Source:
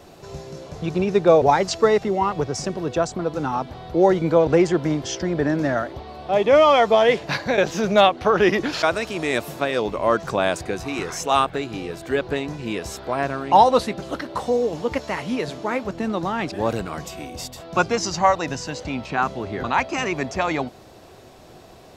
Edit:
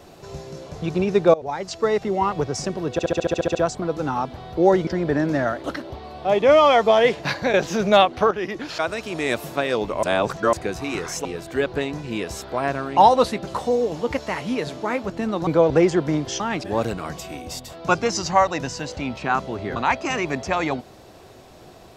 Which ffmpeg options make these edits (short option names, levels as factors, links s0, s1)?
-filter_complex "[0:a]asplit=21[s0][s1][s2][s3][s4][s5][s6][s7][s8][s9][s10][s11][s12][s13][s14][s15][s16][s17][s18][s19][s20];[s0]atrim=end=1.34,asetpts=PTS-STARTPTS,afade=t=out:st=1.336:d=0.004:c=hsin:silence=0.0841395[s21];[s1]atrim=start=1.34:end=2.992,asetpts=PTS-STARTPTS,afade=t=in:d=0.89:silence=0.0841395[s22];[s2]atrim=start=2.918:end=2.992[s23];[s3]atrim=start=2.918:end=2.992[s24];[s4]atrim=start=2.918:end=2.992[s25];[s5]atrim=start=2.918:end=2.992[s26];[s6]atrim=start=2.918:end=2.992[s27];[s7]atrim=start=2.918:end=2.992[s28];[s8]atrim=start=2.918:end=2.992[s29];[s9]atrim=start=2.918:end=2.992[s30];[s10]atrim=start=2.918:end=4.242[s31];[s11]atrim=start=5.168:end=5.942[s32];[s12]atrim=start=14.088:end=14.352[s33];[s13]atrim=start=5.938:end=8.35,asetpts=PTS-STARTPTS,afade=t=out:st=2.408:d=0.004:c=hsin:silence=0.223872[s34];[s14]atrim=start=8.35:end=10.072,asetpts=PTS-STARTPTS,afade=t=in:d=1.06:silence=0.223872[s35];[s15]atrim=start=10.068:end=10.572,asetpts=PTS-STARTPTS,areverse[s36];[s16]atrim=start=10.568:end=11.292[s37];[s17]atrim=start=11.798:end=14.092[s38];[s18]atrim=start=14.348:end=16.282[s39];[s19]atrim=start=4.238:end=5.172[s40];[s20]atrim=start=16.278[s41];[s21][s22]concat=n=2:v=0:a=1[s42];[s42][s23]acrossfade=d=0.004:c1=hsin:c2=hsin[s43];[s43][s24]acrossfade=d=0.004:c1=hsin:c2=hsin[s44];[s44][s25]acrossfade=d=0.004:c1=hsin:c2=hsin[s45];[s45][s26]acrossfade=d=0.004:c1=hsin:c2=hsin[s46];[s46][s27]acrossfade=d=0.004:c1=hsin:c2=hsin[s47];[s47][s28]acrossfade=d=0.004:c1=hsin:c2=hsin[s48];[s48][s29]acrossfade=d=0.004:c1=hsin:c2=hsin[s49];[s49][s30]acrossfade=d=0.004:c1=hsin:c2=hsin[s50];[s50][s31]acrossfade=d=0.004:c1=hsin:c2=hsin[s51];[s51][s32]acrossfade=d=0.004:c1=hsin:c2=hsin[s52];[s52][s33]acrossfade=d=0.004:c1=hsin:c2=hsin[s53];[s34][s35]concat=n=2:v=0:a=1[s54];[s53][s54]acrossfade=d=0.004:c1=hsin:c2=hsin[s55];[s55][s36]acrossfade=d=0.004:c1=hsin:c2=hsin[s56];[s56][s37]acrossfade=d=0.004:c1=hsin:c2=hsin[s57];[s57][s38]acrossfade=d=0.004:c1=hsin:c2=hsin[s58];[s58][s39]acrossfade=d=0.004:c1=hsin:c2=hsin[s59];[s59][s40]acrossfade=d=0.004:c1=hsin:c2=hsin[s60];[s60][s41]acrossfade=d=0.004:c1=hsin:c2=hsin"